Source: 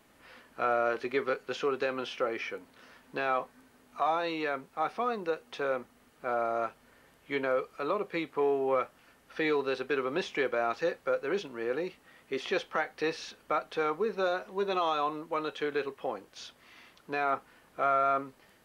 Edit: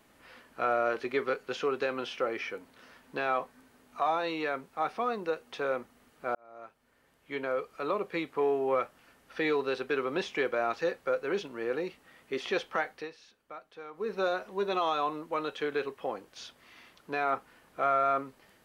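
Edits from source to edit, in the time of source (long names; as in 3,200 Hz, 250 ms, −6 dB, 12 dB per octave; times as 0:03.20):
0:06.35–0:07.93: fade in
0:12.89–0:14.13: duck −15 dB, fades 0.20 s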